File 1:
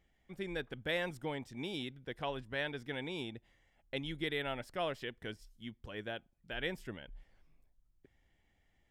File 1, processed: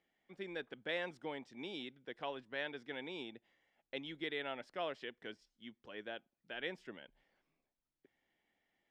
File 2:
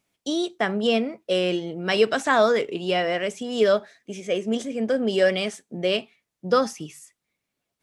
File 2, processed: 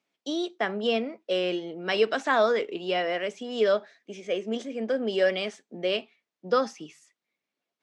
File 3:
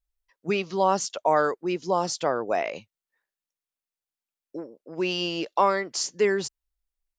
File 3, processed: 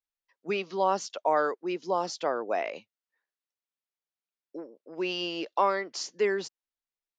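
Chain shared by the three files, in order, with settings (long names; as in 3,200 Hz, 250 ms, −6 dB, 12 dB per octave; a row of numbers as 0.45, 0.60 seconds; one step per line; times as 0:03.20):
three-way crossover with the lows and the highs turned down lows −24 dB, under 190 Hz, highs −21 dB, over 6,400 Hz
level −3.5 dB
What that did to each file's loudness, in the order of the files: −4.0, −4.0, −4.0 LU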